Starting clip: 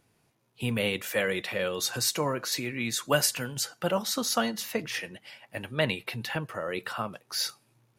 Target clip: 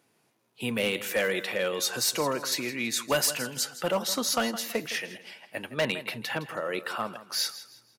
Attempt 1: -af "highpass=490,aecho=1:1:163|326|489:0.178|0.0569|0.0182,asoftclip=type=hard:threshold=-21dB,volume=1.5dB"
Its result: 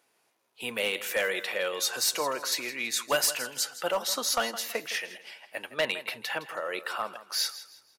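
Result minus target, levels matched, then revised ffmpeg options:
250 Hz band −9.0 dB
-af "highpass=200,aecho=1:1:163|326|489:0.178|0.0569|0.0182,asoftclip=type=hard:threshold=-21dB,volume=1.5dB"

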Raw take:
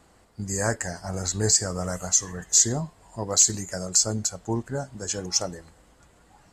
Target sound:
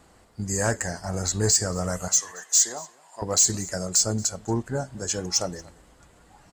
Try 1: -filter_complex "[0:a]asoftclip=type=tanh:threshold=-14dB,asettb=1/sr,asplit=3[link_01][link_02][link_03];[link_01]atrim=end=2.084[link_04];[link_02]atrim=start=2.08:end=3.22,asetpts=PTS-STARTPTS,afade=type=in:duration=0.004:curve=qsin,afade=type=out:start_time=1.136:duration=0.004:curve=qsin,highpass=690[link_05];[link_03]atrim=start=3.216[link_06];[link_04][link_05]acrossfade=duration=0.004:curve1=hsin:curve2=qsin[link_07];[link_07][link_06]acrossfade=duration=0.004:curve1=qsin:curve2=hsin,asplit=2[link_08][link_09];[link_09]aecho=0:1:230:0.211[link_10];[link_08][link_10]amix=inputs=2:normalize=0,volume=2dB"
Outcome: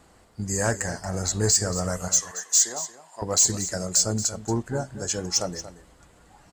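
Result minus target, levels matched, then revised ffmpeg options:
echo-to-direct +9.5 dB
-filter_complex "[0:a]asoftclip=type=tanh:threshold=-14dB,asettb=1/sr,asplit=3[link_01][link_02][link_03];[link_01]atrim=end=2.084[link_04];[link_02]atrim=start=2.08:end=3.22,asetpts=PTS-STARTPTS,afade=type=in:duration=0.004:curve=qsin,afade=type=out:start_time=1.136:duration=0.004:curve=qsin,highpass=690[link_05];[link_03]atrim=start=3.216[link_06];[link_04][link_05]acrossfade=duration=0.004:curve1=hsin:curve2=qsin[link_07];[link_07][link_06]acrossfade=duration=0.004:curve1=qsin:curve2=hsin,asplit=2[link_08][link_09];[link_09]aecho=0:1:230:0.0708[link_10];[link_08][link_10]amix=inputs=2:normalize=0,volume=2dB"

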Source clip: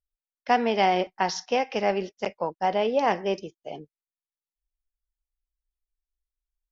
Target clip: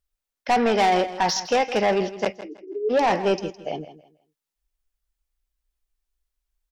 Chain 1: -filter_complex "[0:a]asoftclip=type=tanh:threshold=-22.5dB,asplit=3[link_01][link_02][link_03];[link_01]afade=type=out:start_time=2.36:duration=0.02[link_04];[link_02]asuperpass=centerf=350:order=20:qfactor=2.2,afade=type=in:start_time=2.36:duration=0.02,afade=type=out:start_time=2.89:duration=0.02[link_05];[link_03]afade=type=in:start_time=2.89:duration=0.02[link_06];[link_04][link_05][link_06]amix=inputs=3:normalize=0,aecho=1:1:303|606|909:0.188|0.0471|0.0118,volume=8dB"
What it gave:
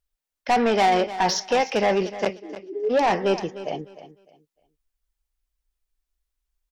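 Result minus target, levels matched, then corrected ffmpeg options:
echo 141 ms late
-filter_complex "[0:a]asoftclip=type=tanh:threshold=-22.5dB,asplit=3[link_01][link_02][link_03];[link_01]afade=type=out:start_time=2.36:duration=0.02[link_04];[link_02]asuperpass=centerf=350:order=20:qfactor=2.2,afade=type=in:start_time=2.36:duration=0.02,afade=type=out:start_time=2.89:duration=0.02[link_05];[link_03]afade=type=in:start_time=2.89:duration=0.02[link_06];[link_04][link_05][link_06]amix=inputs=3:normalize=0,aecho=1:1:162|324|486:0.188|0.0471|0.0118,volume=8dB"

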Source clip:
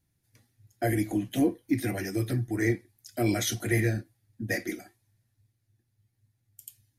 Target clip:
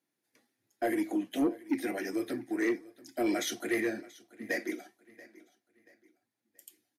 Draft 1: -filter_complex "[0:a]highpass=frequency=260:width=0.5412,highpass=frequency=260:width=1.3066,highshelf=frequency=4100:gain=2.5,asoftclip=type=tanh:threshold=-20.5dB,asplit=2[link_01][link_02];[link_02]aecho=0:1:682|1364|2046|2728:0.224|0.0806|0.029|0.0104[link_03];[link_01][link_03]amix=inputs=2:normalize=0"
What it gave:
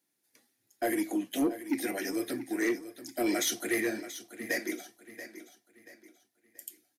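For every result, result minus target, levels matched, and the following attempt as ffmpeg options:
8,000 Hz band +6.5 dB; echo-to-direct +7.5 dB
-filter_complex "[0:a]highpass=frequency=260:width=0.5412,highpass=frequency=260:width=1.3066,highshelf=frequency=4100:gain=-8,asoftclip=type=tanh:threshold=-20.5dB,asplit=2[link_01][link_02];[link_02]aecho=0:1:682|1364|2046|2728:0.224|0.0806|0.029|0.0104[link_03];[link_01][link_03]amix=inputs=2:normalize=0"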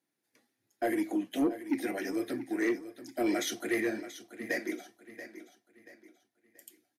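echo-to-direct +7.5 dB
-filter_complex "[0:a]highpass=frequency=260:width=0.5412,highpass=frequency=260:width=1.3066,highshelf=frequency=4100:gain=-8,asoftclip=type=tanh:threshold=-20.5dB,asplit=2[link_01][link_02];[link_02]aecho=0:1:682|1364|2046:0.0944|0.034|0.0122[link_03];[link_01][link_03]amix=inputs=2:normalize=0"

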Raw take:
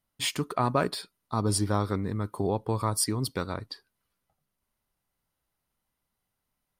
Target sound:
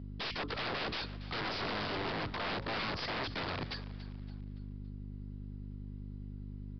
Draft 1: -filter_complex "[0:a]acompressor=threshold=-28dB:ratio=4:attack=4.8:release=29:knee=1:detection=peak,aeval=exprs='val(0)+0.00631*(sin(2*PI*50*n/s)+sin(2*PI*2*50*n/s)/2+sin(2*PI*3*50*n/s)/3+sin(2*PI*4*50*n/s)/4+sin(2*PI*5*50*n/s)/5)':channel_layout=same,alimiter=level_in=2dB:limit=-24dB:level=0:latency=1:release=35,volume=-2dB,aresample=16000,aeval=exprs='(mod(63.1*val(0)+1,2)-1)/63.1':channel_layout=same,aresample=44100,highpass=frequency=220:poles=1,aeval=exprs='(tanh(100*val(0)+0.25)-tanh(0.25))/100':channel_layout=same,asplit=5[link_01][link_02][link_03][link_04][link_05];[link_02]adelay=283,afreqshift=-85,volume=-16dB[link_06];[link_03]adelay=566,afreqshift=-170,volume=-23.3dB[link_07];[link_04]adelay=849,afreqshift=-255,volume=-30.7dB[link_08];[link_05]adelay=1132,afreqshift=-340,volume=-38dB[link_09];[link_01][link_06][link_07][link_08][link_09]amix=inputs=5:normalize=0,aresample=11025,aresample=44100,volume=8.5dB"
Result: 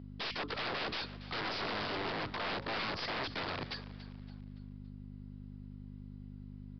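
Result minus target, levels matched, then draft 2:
125 Hz band −5.0 dB
-filter_complex "[0:a]acompressor=threshold=-28dB:ratio=4:attack=4.8:release=29:knee=1:detection=peak,aeval=exprs='val(0)+0.00631*(sin(2*PI*50*n/s)+sin(2*PI*2*50*n/s)/2+sin(2*PI*3*50*n/s)/3+sin(2*PI*4*50*n/s)/4+sin(2*PI*5*50*n/s)/5)':channel_layout=same,alimiter=level_in=2dB:limit=-24dB:level=0:latency=1:release=35,volume=-2dB,aresample=16000,aeval=exprs='(mod(63.1*val(0)+1,2)-1)/63.1':channel_layout=same,aresample=44100,highpass=frequency=91:poles=1,aeval=exprs='(tanh(100*val(0)+0.25)-tanh(0.25))/100':channel_layout=same,asplit=5[link_01][link_02][link_03][link_04][link_05];[link_02]adelay=283,afreqshift=-85,volume=-16dB[link_06];[link_03]adelay=566,afreqshift=-170,volume=-23.3dB[link_07];[link_04]adelay=849,afreqshift=-255,volume=-30.7dB[link_08];[link_05]adelay=1132,afreqshift=-340,volume=-38dB[link_09];[link_01][link_06][link_07][link_08][link_09]amix=inputs=5:normalize=0,aresample=11025,aresample=44100,volume=8.5dB"

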